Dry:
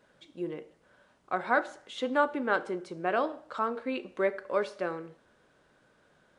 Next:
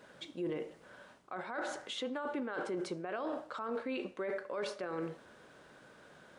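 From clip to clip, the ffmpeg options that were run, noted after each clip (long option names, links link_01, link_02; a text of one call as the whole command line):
ffmpeg -i in.wav -af "lowshelf=frequency=63:gain=-11,areverse,acompressor=threshold=-36dB:ratio=8,areverse,alimiter=level_in=13.5dB:limit=-24dB:level=0:latency=1:release=17,volume=-13.5dB,volume=7.5dB" out.wav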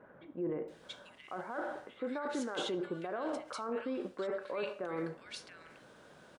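ffmpeg -i in.wav -filter_complex "[0:a]acrossover=split=1800[link_01][link_02];[link_02]adelay=680[link_03];[link_01][link_03]amix=inputs=2:normalize=0,volume=1dB" out.wav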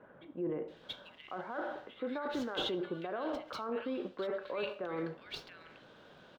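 ffmpeg -i in.wav -filter_complex "[0:a]acrossover=split=460|4600[link_01][link_02][link_03];[link_02]aexciter=amount=2.7:drive=2.1:freq=2900[link_04];[link_03]acrusher=samples=30:mix=1:aa=0.000001:lfo=1:lforange=18:lforate=1.6[link_05];[link_01][link_04][link_05]amix=inputs=3:normalize=0" out.wav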